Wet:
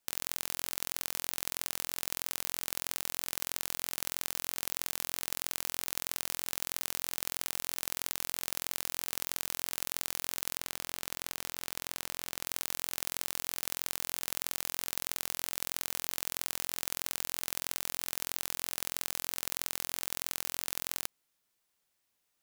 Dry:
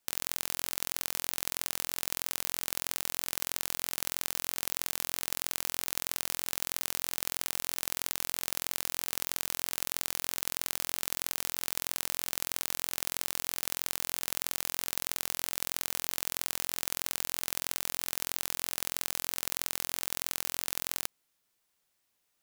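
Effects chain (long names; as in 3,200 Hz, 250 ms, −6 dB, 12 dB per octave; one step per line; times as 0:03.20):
0:10.57–0:12.46: high-shelf EQ 5,400 Hz −5 dB
level −2 dB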